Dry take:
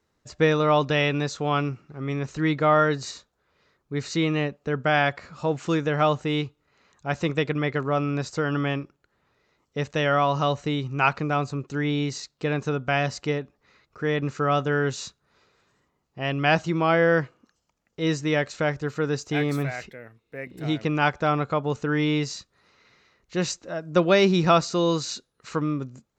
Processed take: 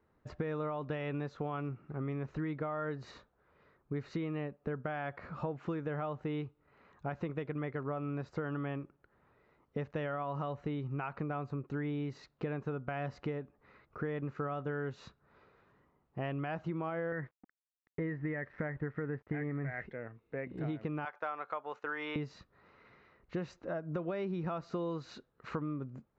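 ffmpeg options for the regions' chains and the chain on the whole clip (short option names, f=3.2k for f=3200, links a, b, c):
-filter_complex "[0:a]asettb=1/sr,asplit=3[a][b][c];[a]atrim=end=17.124[d];[b]atrim=start=17.12:end=19.86,asetpts=PTS-STARTPTS,afade=t=in:d=0.004:c=qsin,afade=t=out:st=2.736:d=0.004:c=qsin,lowpass=f=1.9k:t=q:w=9.3,tiltshelf=f=670:g=6,aeval=exprs='sgn(val(0))*max(abs(val(0))-0.00299,0)':c=same[e];[c]atrim=start=19.856[f];[d][e]acrossfade=d=0.004:c1=hsin:c2=qsin[g];[g][f]acrossfade=d=0.004:c1=qsin:c2=hsin,asettb=1/sr,asplit=3[h][i][j];[h]atrim=end=21.054[k];[i]atrim=start=21.05:end=22.16,asetpts=PTS-STARTPTS,afade=t=in:d=0.004:c=qsin,afade=t=out:st=1.106:d=0.004:c=qsin,highpass=820,agate=range=-12dB:threshold=-50dB:ratio=16:release=100:detection=peak[l];[j]atrim=start=22.156[m];[k][l]acrossfade=d=0.004:c1=hsin:c2=qsin[n];[n][m]acrossfade=d=0.004:c1=qsin:c2=hsin,alimiter=limit=-15.5dB:level=0:latency=1:release=144,lowpass=1.7k,acompressor=threshold=-36dB:ratio=6,volume=1dB"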